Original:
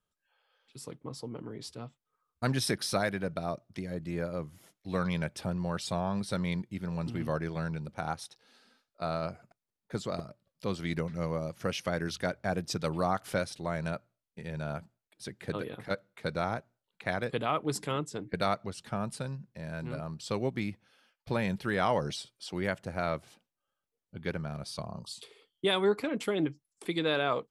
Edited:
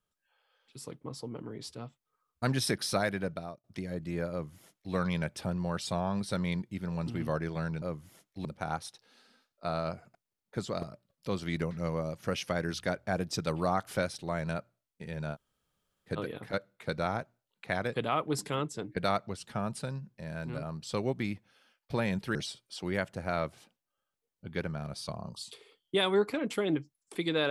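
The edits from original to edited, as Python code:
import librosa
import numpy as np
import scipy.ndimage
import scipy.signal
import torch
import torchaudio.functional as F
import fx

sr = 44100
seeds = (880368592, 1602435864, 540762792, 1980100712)

y = fx.edit(x, sr, fx.fade_out_span(start_s=3.25, length_s=0.39),
    fx.duplicate(start_s=4.31, length_s=0.63, to_s=7.82),
    fx.room_tone_fill(start_s=14.71, length_s=0.75, crossfade_s=0.06),
    fx.cut(start_s=21.72, length_s=0.33), tone=tone)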